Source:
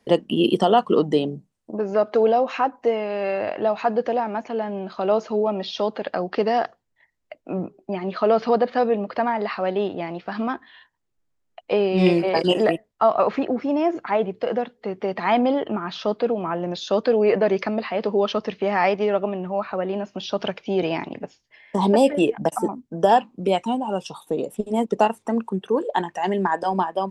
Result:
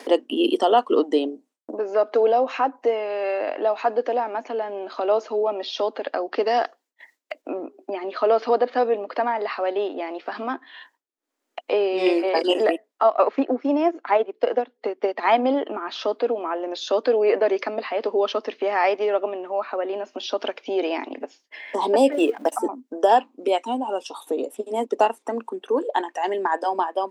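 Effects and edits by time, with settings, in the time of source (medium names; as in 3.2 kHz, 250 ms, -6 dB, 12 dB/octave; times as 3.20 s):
6.46–7.42 s: treble shelf 2.5 kHz +6.5 dB
13.03–15.47 s: transient shaper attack +5 dB, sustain -9 dB
22.12–22.56 s: companding laws mixed up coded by mu
whole clip: upward compressor, threshold -24 dBFS; elliptic high-pass 260 Hz, stop band 40 dB; expander -49 dBFS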